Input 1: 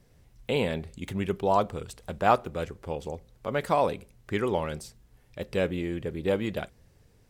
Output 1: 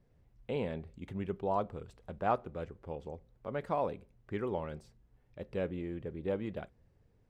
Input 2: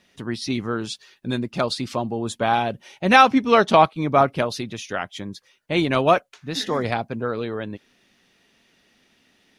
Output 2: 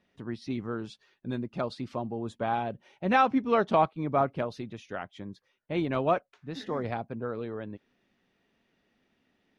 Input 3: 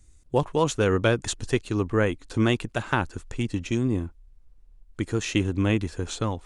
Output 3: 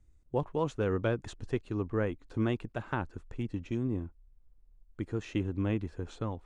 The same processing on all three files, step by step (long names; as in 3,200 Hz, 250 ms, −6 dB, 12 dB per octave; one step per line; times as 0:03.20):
low-pass filter 1,300 Hz 6 dB per octave
level −7.5 dB